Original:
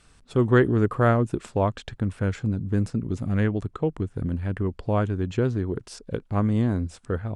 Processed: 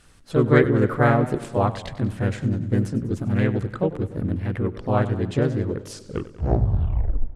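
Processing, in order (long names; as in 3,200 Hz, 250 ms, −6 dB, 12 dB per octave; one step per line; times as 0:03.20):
turntable brake at the end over 1.48 s
pitch-shifted copies added +3 semitones −2 dB
feedback echo with a swinging delay time 96 ms, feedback 61%, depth 111 cents, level −15.5 dB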